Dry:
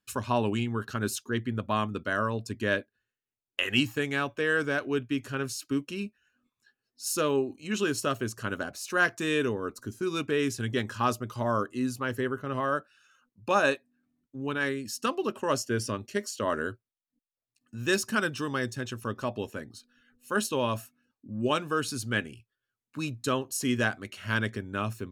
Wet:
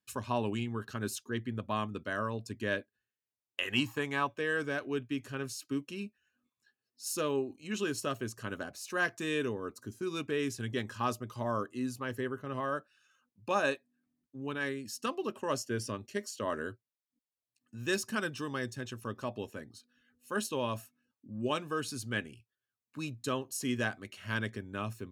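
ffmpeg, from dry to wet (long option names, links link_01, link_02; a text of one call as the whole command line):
ffmpeg -i in.wav -filter_complex "[0:a]asettb=1/sr,asplit=3[link_01][link_02][link_03];[link_01]atrim=end=3.734[link_04];[link_02]atrim=start=3.73:end=4.27,asetpts=PTS-STARTPTS,afade=type=in:duration=0.004:curve=qsin,afade=type=out:start_time=0.536:duration=0.004:curve=qsin,equalizer=frequency=1000:width=2.6:gain=13[link_05];[link_03]atrim=start=4.266[link_06];[link_04][link_05]acrossfade=duration=0.004:curve1=hsin:curve2=qsin[link_07];[link_07][link_06]acrossfade=duration=0.004:curve1=qsin:curve2=hsin,highpass=55,bandreject=frequency=1400:width=12,volume=-5.5dB" out.wav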